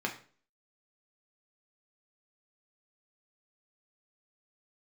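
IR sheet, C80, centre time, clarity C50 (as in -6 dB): 15.0 dB, 16 ms, 11.0 dB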